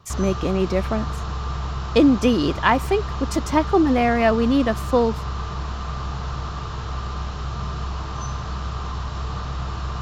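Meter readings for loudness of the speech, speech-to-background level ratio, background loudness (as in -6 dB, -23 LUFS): -20.5 LUFS, 9.0 dB, -29.5 LUFS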